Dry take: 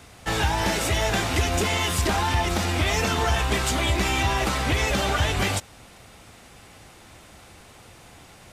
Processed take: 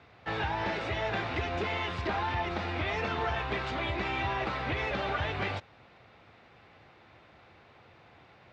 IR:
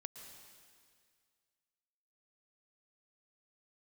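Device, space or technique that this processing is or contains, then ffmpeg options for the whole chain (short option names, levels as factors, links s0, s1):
guitar cabinet: -af "highpass=100,equalizer=f=190:t=q:w=4:g=-5,equalizer=f=270:t=q:w=4:g=-4,equalizer=f=3100:t=q:w=4:g=-5,lowpass=f=3600:w=0.5412,lowpass=f=3600:w=1.3066,volume=0.473"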